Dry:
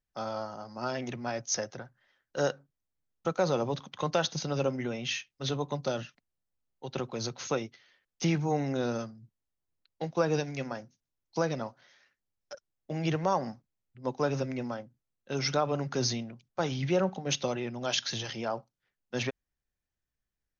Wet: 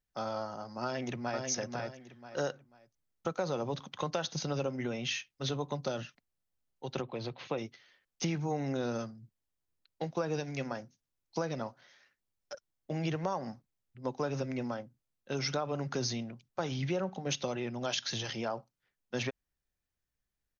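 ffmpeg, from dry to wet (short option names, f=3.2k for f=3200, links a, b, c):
-filter_complex "[0:a]asplit=2[a][b];[b]afade=t=in:st=0.84:d=0.01,afade=t=out:st=1.47:d=0.01,aecho=0:1:490|980|1470:0.630957|0.157739|0.0394348[c];[a][c]amix=inputs=2:normalize=0,asplit=3[d][e][f];[d]afade=t=out:st=7.01:d=0.02[g];[e]highpass=110,equalizer=f=220:t=q:w=4:g=-5,equalizer=f=410:t=q:w=4:g=-3,equalizer=f=1.4k:t=q:w=4:g=-9,lowpass=f=3.5k:w=0.5412,lowpass=f=3.5k:w=1.3066,afade=t=in:st=7.01:d=0.02,afade=t=out:st=7.57:d=0.02[h];[f]afade=t=in:st=7.57:d=0.02[i];[g][h][i]amix=inputs=3:normalize=0,acompressor=threshold=-31dB:ratio=3"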